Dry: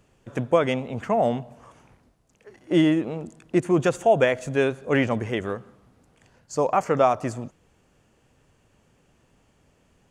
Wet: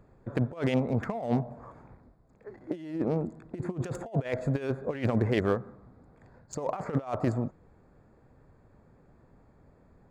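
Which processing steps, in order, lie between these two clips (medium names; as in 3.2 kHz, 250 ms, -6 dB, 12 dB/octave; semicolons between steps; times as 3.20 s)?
local Wiener filter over 15 samples; bass shelf 85 Hz +2.5 dB; compressor with a negative ratio -26 dBFS, ratio -0.5; trim -2 dB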